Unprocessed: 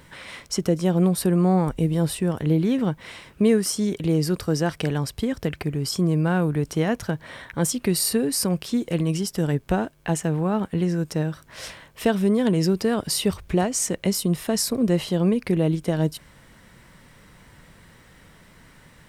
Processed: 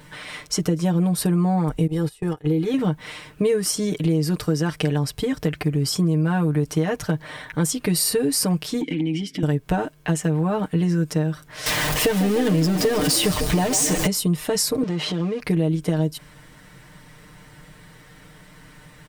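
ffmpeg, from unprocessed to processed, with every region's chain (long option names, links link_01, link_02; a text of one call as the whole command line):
ffmpeg -i in.wav -filter_complex "[0:a]asettb=1/sr,asplit=3[link_01][link_02][link_03];[link_01]atrim=end=1.874[link_04];[link_02]atrim=start=1.87:end=2.74,asetpts=PTS-STARTPTS,afade=type=in:duration=0.004:curve=qsin,afade=type=out:start_time=0.866:duration=0.004:curve=qsin,agate=range=-22dB:threshold=-25dB:ratio=16:release=100:detection=peak,aecho=1:1:2.4:0.53,atrim=end_sample=38367,acompressor=threshold=-26dB:ratio=1.5:attack=3.2:release=140:knee=1:detection=peak[link_05];[link_03]atrim=start=2.736[link_06];[link_04][link_05]acrossfade=duration=0.004:curve1=hsin:curve2=qsin[link_07];[link_07][link_06]acrossfade=duration=0.004:curve1=qsin:curve2=hsin,asettb=1/sr,asplit=3[link_08][link_09][link_10];[link_08]atrim=end=8.814[link_11];[link_09]atrim=start=8.81:end=9.43,asetpts=PTS-STARTPTS,afade=type=in:duration=0.004:curve=qsin,afade=type=out:start_time=0.616:duration=0.004:curve=qsin,acompressor=threshold=-29dB:ratio=5:attack=3.2:release=140:knee=1:detection=peak,asplit=3[link_12][link_13][link_14];[link_12]bandpass=frequency=270:width_type=q:width=8,volume=0dB[link_15];[link_13]bandpass=frequency=2290:width_type=q:width=8,volume=-6dB[link_16];[link_14]bandpass=frequency=3010:width_type=q:width=8,volume=-9dB[link_17];[link_15][link_16][link_17]amix=inputs=3:normalize=0,aeval=exprs='0.0944*sin(PI/2*5.01*val(0)/0.0944)':channel_layout=same[link_18];[link_10]atrim=start=9.426[link_19];[link_11][link_18]acrossfade=duration=0.004:curve1=hsin:curve2=qsin[link_20];[link_20][link_19]acrossfade=duration=0.004:curve1=qsin:curve2=hsin,asettb=1/sr,asplit=3[link_21][link_22][link_23];[link_21]atrim=end=11.664[link_24];[link_22]atrim=start=11.66:end=14.07,asetpts=PTS-STARTPTS,afade=type=in:duration=0.004:curve=qsin,afade=type=out:start_time=2.406:duration=0.004:curve=qsin,aeval=exprs='val(0)+0.5*0.0891*sgn(val(0))':channel_layout=same,bandreject=frequency=1400:width=19,asplit=8[link_25][link_26][link_27][link_28][link_29][link_30][link_31][link_32];[link_26]adelay=148,afreqshift=48,volume=-13dB[link_33];[link_27]adelay=296,afreqshift=96,volume=-16.9dB[link_34];[link_28]adelay=444,afreqshift=144,volume=-20.8dB[link_35];[link_29]adelay=592,afreqshift=192,volume=-24.6dB[link_36];[link_30]adelay=740,afreqshift=240,volume=-28.5dB[link_37];[link_31]adelay=888,afreqshift=288,volume=-32.4dB[link_38];[link_32]adelay=1036,afreqshift=336,volume=-36.3dB[link_39];[link_25][link_33][link_34][link_35][link_36][link_37][link_38][link_39]amix=inputs=8:normalize=0,atrim=end_sample=106281[link_40];[link_23]atrim=start=14.066[link_41];[link_24][link_40]acrossfade=duration=0.004:curve1=hsin:curve2=qsin[link_42];[link_42][link_41]acrossfade=duration=0.004:curve1=qsin:curve2=hsin,asettb=1/sr,asplit=3[link_43][link_44][link_45];[link_43]atrim=end=14.834[link_46];[link_44]atrim=start=14.83:end=15.4,asetpts=PTS-STARTPTS,afade=type=in:duration=0.004:curve=qsin,afade=type=out:start_time=0.566:duration=0.004:curve=qsin,aeval=exprs='val(0)+0.5*0.0335*sgn(val(0))':channel_layout=same,highpass=170,lowpass=5400,acompressor=threshold=-26dB:ratio=2.5:attack=3.2:release=140:knee=1:detection=peak[link_47];[link_45]atrim=start=15.396[link_48];[link_46][link_47]acrossfade=duration=0.004:curve1=hsin:curve2=qsin[link_49];[link_49][link_48]acrossfade=duration=0.004:curve1=qsin:curve2=hsin,aecho=1:1:6.6:0.82,acompressor=threshold=-18dB:ratio=6,volume=1.5dB" out.wav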